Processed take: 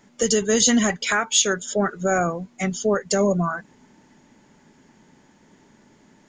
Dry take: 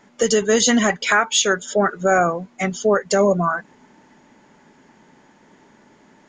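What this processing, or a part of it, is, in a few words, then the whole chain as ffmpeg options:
smiley-face EQ: -af "lowshelf=f=190:g=6.5,equalizer=f=990:t=o:w=2.7:g=-3.5,highshelf=f=5.1k:g=6.5,volume=-3dB"

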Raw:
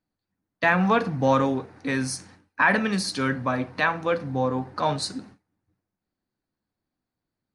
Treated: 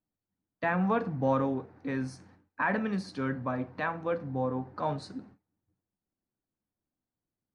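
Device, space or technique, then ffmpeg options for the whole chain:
through cloth: -af "lowpass=9.1k,highshelf=f=2.4k:g=-16,volume=-5.5dB"

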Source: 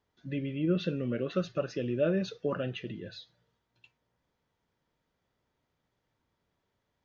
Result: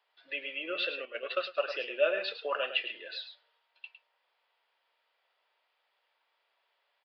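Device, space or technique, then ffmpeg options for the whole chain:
musical greeting card: -filter_complex "[0:a]bandreject=f=60:t=h:w=6,bandreject=f=120:t=h:w=6,bandreject=f=180:t=h:w=6,bandreject=f=240:t=h:w=6,aecho=1:1:107:0.316,aresample=11025,aresample=44100,highpass=f=610:w=0.5412,highpass=f=610:w=1.3066,equalizer=f=2.7k:t=o:w=0.52:g=7.5,asettb=1/sr,asplit=3[a][b][c];[a]atrim=end=1.054[d];[b]atrim=start=1.05:end=1.6,asetpts=PTS-STARTPTS,afade=t=in:d=0.004:c=qsin,afade=t=out:st=0.546:d=0.004:c=qsin,agate=range=-9dB:threshold=-40dB:ratio=16:detection=peak[e];[c]atrim=start=1.596[f];[d][e]acrossfade=d=0.004:c1=hsin:c2=qsin[g];[g][f]acrossfade=d=0.004:c1=qsin:c2=hsin,volume=5.5dB"

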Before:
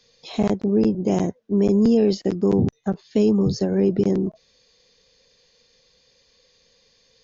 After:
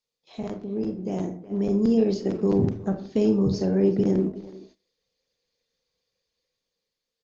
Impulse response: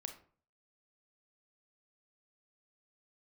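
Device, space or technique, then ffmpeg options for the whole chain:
speakerphone in a meeting room: -filter_complex "[1:a]atrim=start_sample=2205[a];[0:a][a]afir=irnorm=-1:irlink=0,asplit=2[b][c];[c]adelay=370,highpass=300,lowpass=3.4k,asoftclip=type=hard:threshold=-18.5dB,volume=-15dB[d];[b][d]amix=inputs=2:normalize=0,dynaudnorm=f=290:g=11:m=11.5dB,agate=range=-16dB:threshold=-43dB:ratio=16:detection=peak,volume=-7.5dB" -ar 48000 -c:a libopus -b:a 20k

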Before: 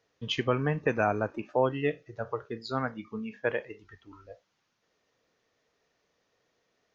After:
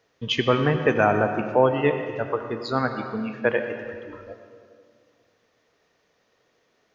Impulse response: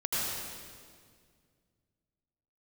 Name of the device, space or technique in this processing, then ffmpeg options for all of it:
filtered reverb send: -filter_complex "[0:a]asplit=2[a][b];[b]highpass=150,lowpass=4.4k[c];[1:a]atrim=start_sample=2205[d];[c][d]afir=irnorm=-1:irlink=0,volume=-13dB[e];[a][e]amix=inputs=2:normalize=0,volume=5.5dB"

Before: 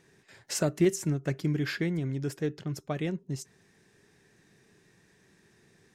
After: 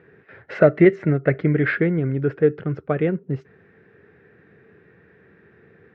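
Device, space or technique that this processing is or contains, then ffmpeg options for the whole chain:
bass cabinet: -filter_complex "[0:a]asettb=1/sr,asplit=3[a][b][c];[a]atrim=end=0.534[d];[b]atrim=start=0.53:end=1.75,asetpts=PTS-STARTPTS,afade=t=in:d=0.004:c=qsin,afade=t=out:st=1.216:d=0.004:c=qsin,equalizer=f=630:t=o:w=0.33:g=7,equalizer=f=2k:t=o:w=0.33:g=9,equalizer=f=4k:t=o:w=0.33:g=5[e];[c]atrim=start=1.746[f];[d][e]acrossfade=d=0.004:c1=hsin:c2=qsin[g];[g][f]acrossfade=d=0.004:c1=qsin:c2=hsin,highpass=68,equalizer=f=82:t=q:w=4:g=6,equalizer=f=470:t=q:w=4:g=9,equalizer=f=950:t=q:w=4:g=-5,equalizer=f=1.4k:t=q:w=4:g=7,lowpass=f=2.3k:w=0.5412,lowpass=f=2.3k:w=1.3066,volume=8.5dB"

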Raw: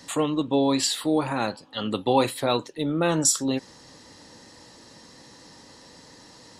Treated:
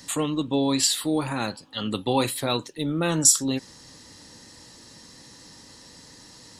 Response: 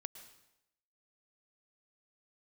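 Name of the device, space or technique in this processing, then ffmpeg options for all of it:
smiley-face EQ: -af "lowshelf=f=120:g=4.5,equalizer=f=640:t=o:w=1.7:g=-4.5,highshelf=f=6.7k:g=8"

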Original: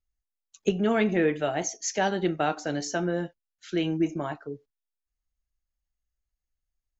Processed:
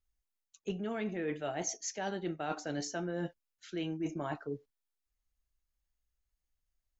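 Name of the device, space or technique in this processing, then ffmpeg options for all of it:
compression on the reversed sound: -af "areverse,acompressor=threshold=-33dB:ratio=10,areverse"

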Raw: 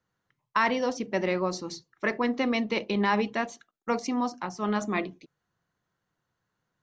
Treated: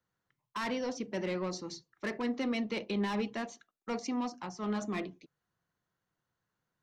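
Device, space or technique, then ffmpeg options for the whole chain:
one-band saturation: -filter_complex "[0:a]acrossover=split=360|3100[a][b][c];[b]asoftclip=type=tanh:threshold=-29.5dB[d];[a][d][c]amix=inputs=3:normalize=0,volume=-5dB"

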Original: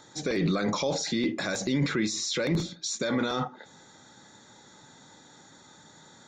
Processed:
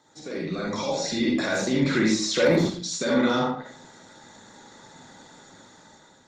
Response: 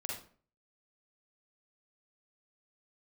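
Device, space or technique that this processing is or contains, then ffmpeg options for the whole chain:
far-field microphone of a smart speaker: -filter_complex "[0:a]asettb=1/sr,asplit=3[a][b][c];[a]atrim=end=1.974[d];[b]atrim=start=1.97:end=2.62,asetpts=PTS-STARTPTS,afade=t=in:d=0.004:c=qsin,afade=t=out:st=0.646:d=0.004:c=qsin,equalizer=f=750:t=o:w=2.1:g=6[e];[c]atrim=start=2.616[f];[d][e]acrossfade=d=0.004:c1=hsin:c2=qsin[g];[g][f]acrossfade=d=0.004:c1=qsin:c2=hsin[h];[1:a]atrim=start_sample=2205[i];[h][i]afir=irnorm=-1:irlink=0,highpass=130,dynaudnorm=f=440:g=5:m=11dB,volume=-4dB" -ar 48000 -c:a libopus -b:a 24k

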